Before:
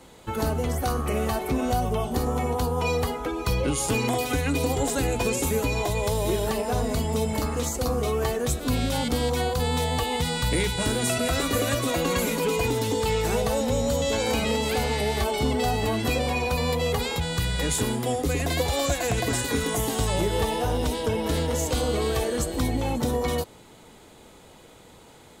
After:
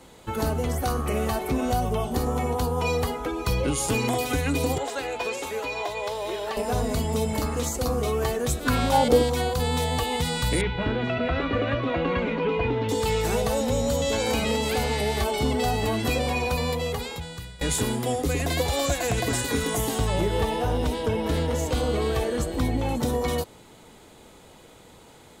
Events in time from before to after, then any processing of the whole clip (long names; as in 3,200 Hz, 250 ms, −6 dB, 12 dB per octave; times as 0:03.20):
0:04.78–0:06.57: three-way crossover with the lows and the highs turned down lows −20 dB, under 420 Hz, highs −14 dB, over 5,000 Hz
0:08.65–0:09.22: parametric band 1,700 Hz → 390 Hz +14.5 dB 0.95 octaves
0:10.61–0:12.89: low-pass filter 2,900 Hz 24 dB per octave
0:16.50–0:17.61: fade out, to −20.5 dB
0:19.98–0:22.89: bass and treble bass +1 dB, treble −6 dB